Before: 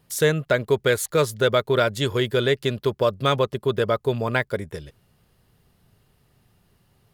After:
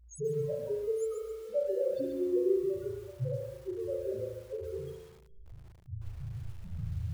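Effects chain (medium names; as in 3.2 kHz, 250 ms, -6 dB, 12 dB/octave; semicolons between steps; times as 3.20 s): sawtooth pitch modulation -2 st, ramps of 237 ms; recorder AGC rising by 20 dB/s; reverb removal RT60 0.69 s; peaking EQ 620 Hz +8.5 dB 0.97 oct; compression 12:1, threshold -24 dBFS, peak gain reduction 14.5 dB; trance gate "xxxxx.xx..xxxx." 102 bpm -24 dB; mains buzz 60 Hz, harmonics 3, -58 dBFS -6 dB/octave; phaser 0.29 Hz, delay 4 ms, feedback 42%; loudest bins only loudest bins 1; spring tank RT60 1 s, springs 36 ms, chirp 60 ms, DRR 0 dB; bit-crushed delay 133 ms, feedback 35%, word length 9-bit, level -6 dB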